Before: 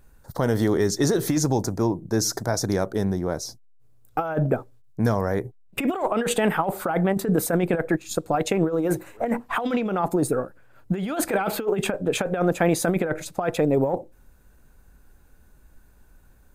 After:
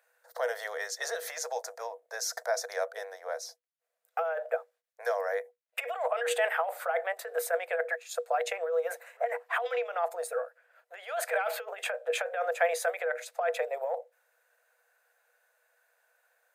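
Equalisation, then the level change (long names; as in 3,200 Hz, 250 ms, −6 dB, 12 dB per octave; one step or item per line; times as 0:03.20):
Chebyshev high-pass with heavy ripple 470 Hz, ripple 9 dB
0.0 dB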